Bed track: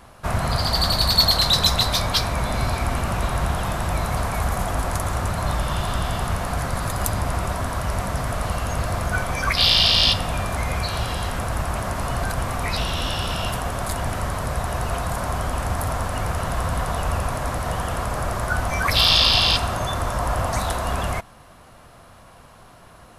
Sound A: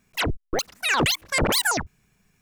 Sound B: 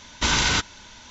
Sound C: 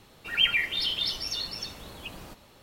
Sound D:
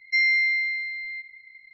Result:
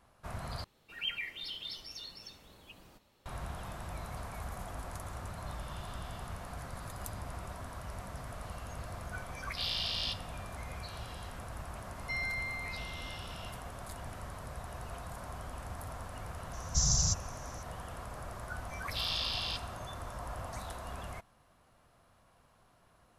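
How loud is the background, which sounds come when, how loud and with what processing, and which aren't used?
bed track -18.5 dB
0.64 replace with C -13.5 dB
11.96 add D -16 dB
16.53 add B -1 dB + Chebyshev band-stop 160–5500 Hz, order 4
not used: A

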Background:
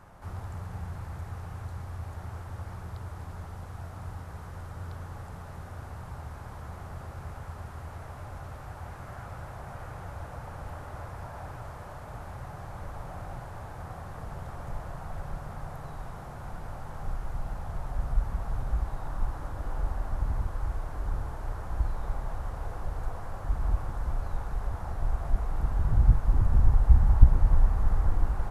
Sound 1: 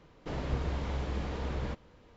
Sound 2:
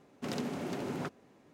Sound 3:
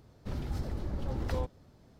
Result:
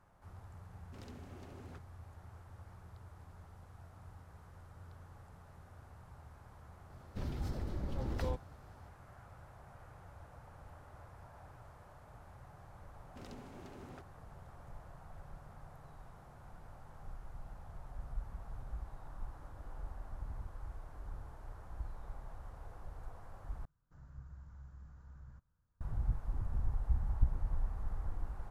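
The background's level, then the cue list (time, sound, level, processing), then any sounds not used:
background -14.5 dB
0.7 add 2 -17.5 dB
6.9 add 3 -3.5 dB
12.93 add 2 -16 dB
23.65 replace with 1 -17.5 dB + EQ curve 140 Hz 0 dB, 210 Hz -11 dB, 420 Hz -22 dB, 1500 Hz -4 dB, 2200 Hz -23 dB, 3400 Hz -25 dB, 7200 Hz -6 dB

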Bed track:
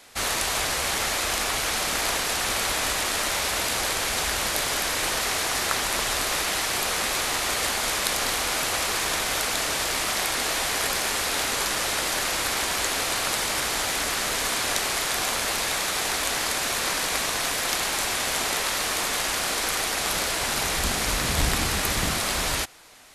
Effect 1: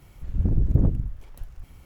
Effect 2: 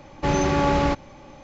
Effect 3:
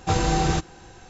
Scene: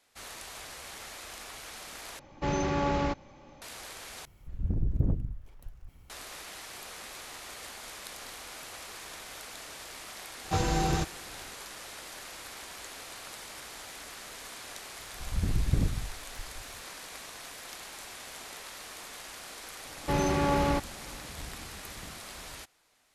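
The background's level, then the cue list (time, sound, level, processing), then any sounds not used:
bed track -18.5 dB
2.19 replace with 2 -8 dB
4.25 replace with 1 -7.5 dB
10.44 add 3 -6 dB
14.98 add 1 -7 dB
19.85 add 2 -6 dB

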